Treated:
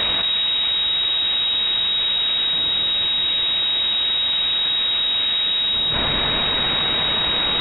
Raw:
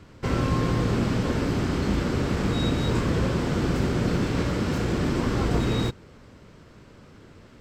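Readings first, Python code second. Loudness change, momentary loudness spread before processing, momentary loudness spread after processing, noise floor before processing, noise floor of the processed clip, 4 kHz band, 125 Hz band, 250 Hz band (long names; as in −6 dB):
+8.5 dB, 2 LU, 0 LU, −50 dBFS, −21 dBFS, +24.0 dB, −13.0 dB, −11.5 dB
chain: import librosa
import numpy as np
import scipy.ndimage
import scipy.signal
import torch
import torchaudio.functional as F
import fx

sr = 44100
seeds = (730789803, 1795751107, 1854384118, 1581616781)

p1 = fx.comb_fb(x, sr, f0_hz=140.0, decay_s=0.2, harmonics='all', damping=0.0, mix_pct=70)
p2 = fx.fold_sine(p1, sr, drive_db=11, ceiling_db=-18.0)
p3 = p1 + (p2 * librosa.db_to_amplitude(-6.0))
p4 = fx.cheby_harmonics(p3, sr, harmonics=(5,), levels_db=(-23,), full_scale_db=-19.5)
p5 = fx.quant_dither(p4, sr, seeds[0], bits=6, dither='triangular')
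p6 = np.abs(p5)
p7 = fx.echo_wet_highpass(p6, sr, ms=192, feedback_pct=77, hz=2500.0, wet_db=-4.5)
p8 = fx.freq_invert(p7, sr, carrier_hz=3800)
y = fx.env_flatten(p8, sr, amount_pct=100)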